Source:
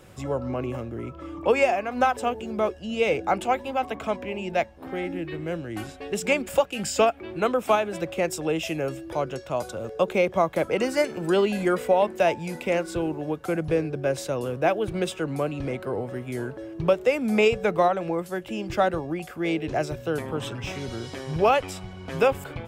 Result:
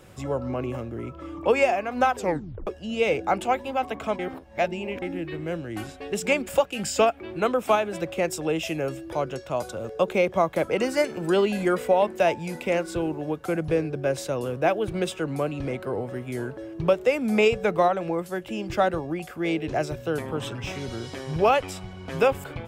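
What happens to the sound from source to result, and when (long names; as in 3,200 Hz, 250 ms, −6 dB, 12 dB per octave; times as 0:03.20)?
0:02.16: tape stop 0.51 s
0:04.19–0:05.02: reverse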